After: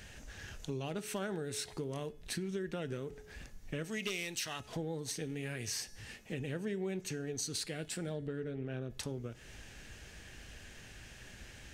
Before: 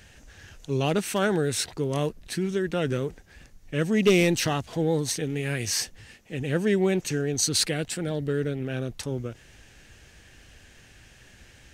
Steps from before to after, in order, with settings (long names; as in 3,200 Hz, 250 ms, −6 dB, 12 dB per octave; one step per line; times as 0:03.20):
0:03.84–0:04.60: tilt shelving filter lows −8 dB, about 880 Hz
0:08.13–0:08.89: low-pass filter 3,200 Hz → 1,900 Hz 6 dB per octave
hum removal 425.8 Hz, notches 31
downward compressor 6 to 1, threshold −37 dBFS, peak gain reduction 19.5 dB
convolution reverb RT60 0.50 s, pre-delay 5 ms, DRR 15 dB